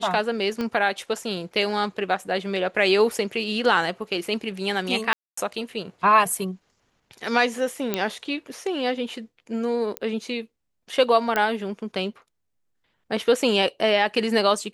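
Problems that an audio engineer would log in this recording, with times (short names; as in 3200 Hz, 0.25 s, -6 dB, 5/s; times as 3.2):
0.61 pop -15 dBFS
5.13–5.37 gap 0.244 s
7.94 pop -8 dBFS
9.97 pop -12 dBFS
11.36 pop -9 dBFS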